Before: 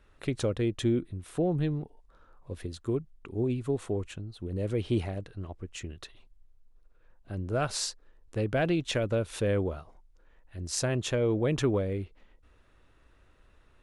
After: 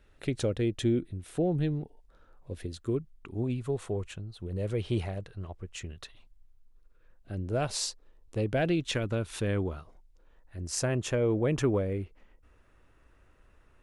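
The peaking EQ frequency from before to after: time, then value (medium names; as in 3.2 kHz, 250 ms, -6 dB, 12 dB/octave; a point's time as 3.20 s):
peaking EQ -7 dB 0.52 oct
2.72 s 1.1 kHz
3.68 s 280 Hz
5.79 s 280 Hz
7.87 s 1.6 kHz
8.41 s 1.6 kHz
9.06 s 530 Hz
9.68 s 530 Hz
10.63 s 3.8 kHz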